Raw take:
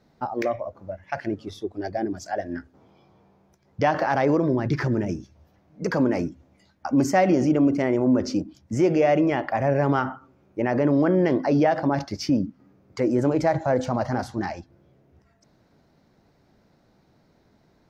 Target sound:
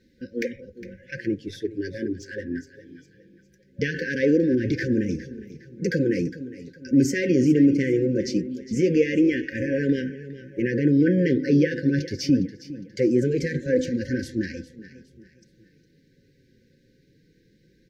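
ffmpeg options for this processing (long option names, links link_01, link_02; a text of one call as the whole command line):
ffmpeg -i in.wav -filter_complex "[0:a]asplit=2[link_01][link_02];[link_02]aecho=0:1:409|818|1227:0.168|0.0621|0.023[link_03];[link_01][link_03]amix=inputs=2:normalize=0,asettb=1/sr,asplit=3[link_04][link_05][link_06];[link_04]atrim=end=2.164[link_07];[link_05]atrim=start=2.16:end=2.58,asetpts=PTS-STARTPTS,afade=type=in:duration=0.004:curve=qsin,afade=type=out:start_time=0.416:duration=0.004:curve=qsin,adynamicsmooth=sensitivity=7:basefreq=3900[link_08];[link_06]atrim=start=2.576[link_09];[link_07][link_08]acrossfade=duration=0.004:curve1=hsin:curve2=qsin[link_10];[link_10][link_09]acrossfade=duration=0.004:curve1=qsin:curve2=hsin,afftfilt=real='re*(1-between(b*sr/4096,550,1500))':imag='im*(1-between(b*sr/4096,550,1500))':win_size=4096:overlap=0.75,flanger=delay=3.1:depth=5:regen=-34:speed=0.21:shape=triangular,volume=5dB" out.wav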